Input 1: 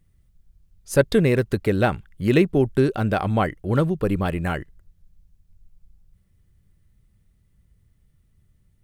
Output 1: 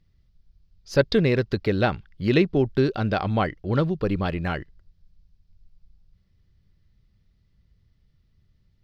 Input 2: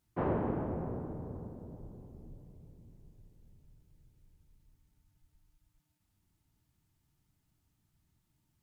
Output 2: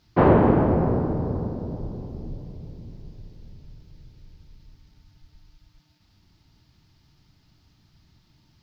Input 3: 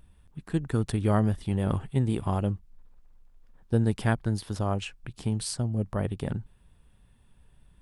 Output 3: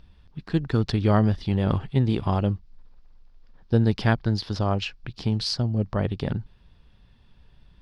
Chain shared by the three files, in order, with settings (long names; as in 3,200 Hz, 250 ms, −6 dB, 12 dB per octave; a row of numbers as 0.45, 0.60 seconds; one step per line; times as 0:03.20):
high shelf with overshoot 6,600 Hz −12 dB, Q 3
normalise the peak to −6 dBFS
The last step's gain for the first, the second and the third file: −2.0, +16.0, +4.0 decibels